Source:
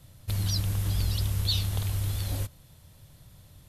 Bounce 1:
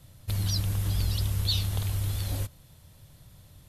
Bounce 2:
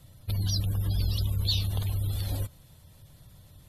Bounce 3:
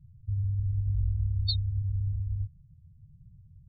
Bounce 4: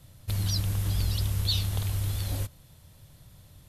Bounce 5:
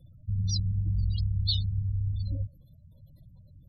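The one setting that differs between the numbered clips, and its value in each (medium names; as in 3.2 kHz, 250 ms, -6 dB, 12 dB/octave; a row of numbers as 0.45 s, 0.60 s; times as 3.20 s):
spectral gate, under each frame's peak: -45 dB, -35 dB, -10 dB, -60 dB, -20 dB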